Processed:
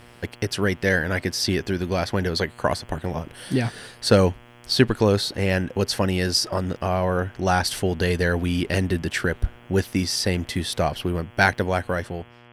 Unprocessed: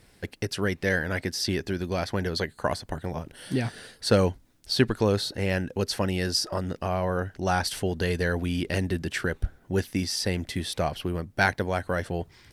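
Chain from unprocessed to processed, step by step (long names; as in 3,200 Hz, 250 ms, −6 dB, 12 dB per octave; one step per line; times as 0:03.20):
fade-out on the ending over 0.74 s
hum with harmonics 120 Hz, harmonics 28, −54 dBFS −3 dB per octave
level +4.5 dB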